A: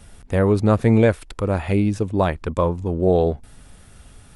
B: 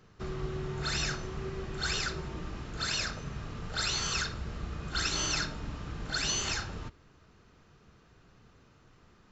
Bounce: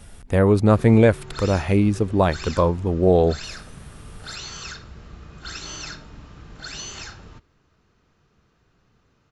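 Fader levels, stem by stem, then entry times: +1.0 dB, -3.5 dB; 0.00 s, 0.50 s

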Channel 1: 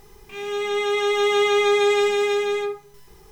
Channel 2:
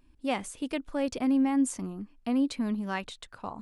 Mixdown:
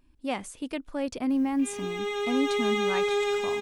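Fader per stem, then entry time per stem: -8.0 dB, -1.0 dB; 1.30 s, 0.00 s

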